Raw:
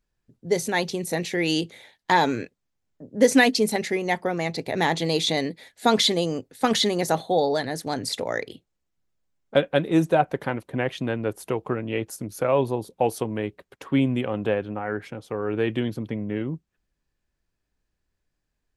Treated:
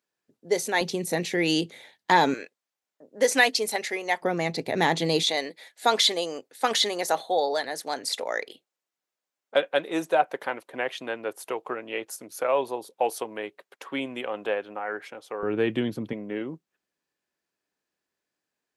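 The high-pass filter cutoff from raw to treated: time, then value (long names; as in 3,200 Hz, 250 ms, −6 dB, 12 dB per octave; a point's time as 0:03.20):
350 Hz
from 0:00.81 150 Hz
from 0:02.34 560 Hz
from 0:04.22 140 Hz
from 0:05.23 520 Hz
from 0:15.43 150 Hz
from 0:16.13 310 Hz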